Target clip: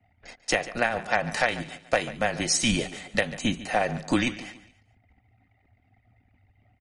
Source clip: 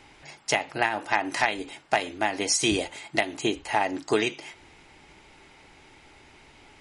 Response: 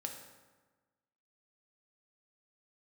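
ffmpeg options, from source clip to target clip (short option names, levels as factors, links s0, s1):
-af "anlmdn=0.0251,aecho=1:1:143|286|429:0.158|0.0602|0.0229,afreqshift=-120"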